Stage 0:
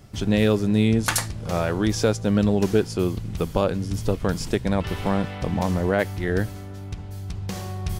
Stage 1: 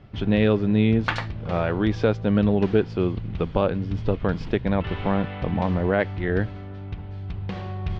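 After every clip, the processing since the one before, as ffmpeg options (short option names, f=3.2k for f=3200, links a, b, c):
-af "lowpass=f=3.4k:w=0.5412,lowpass=f=3.4k:w=1.3066"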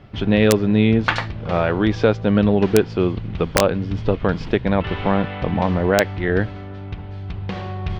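-af "lowshelf=f=250:g=-4,aeval=exprs='(mod(2.66*val(0)+1,2)-1)/2.66':c=same,volume=6dB"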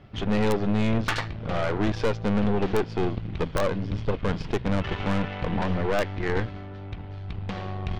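-af "aeval=exprs='(tanh(10*val(0)+0.8)-tanh(0.8))/10':c=same"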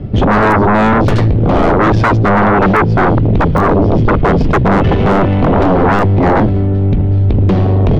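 -filter_complex "[0:a]acrossover=split=500|800[a][b][c];[a]aeval=exprs='0.178*sin(PI/2*6.31*val(0)/0.178)':c=same[d];[c]alimiter=limit=-22.5dB:level=0:latency=1:release=241[e];[d][b][e]amix=inputs=3:normalize=0,volume=8.5dB"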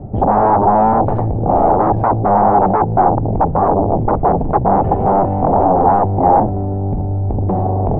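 -af "lowpass=f=800:t=q:w=5.1,volume=-7.5dB"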